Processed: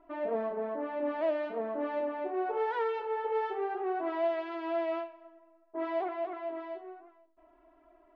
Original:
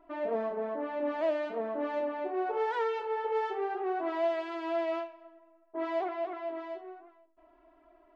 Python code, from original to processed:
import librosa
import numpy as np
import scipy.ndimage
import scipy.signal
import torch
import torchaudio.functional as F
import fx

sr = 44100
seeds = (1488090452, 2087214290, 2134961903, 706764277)

y = fx.air_absorb(x, sr, metres=150.0)